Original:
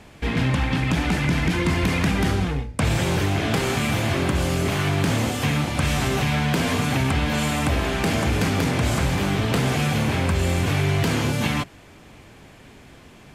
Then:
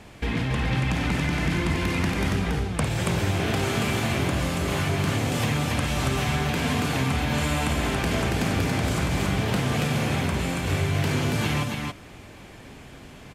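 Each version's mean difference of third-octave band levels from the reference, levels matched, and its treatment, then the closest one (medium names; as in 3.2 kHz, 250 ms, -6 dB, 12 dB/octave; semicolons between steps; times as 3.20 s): 2.5 dB: compression, threshold -23 dBFS, peak gain reduction 7 dB; on a send: loudspeakers at several distances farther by 18 m -9 dB, 96 m -3 dB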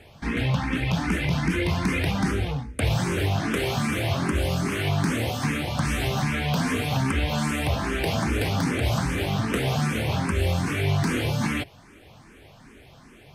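4.0 dB: band-stop 7.2 kHz, Q 8.4; barber-pole phaser +2.5 Hz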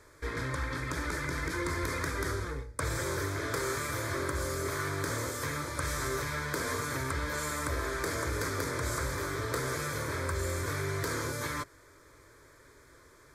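5.5 dB: bass shelf 450 Hz -7 dB; static phaser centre 760 Hz, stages 6; trim -3.5 dB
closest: first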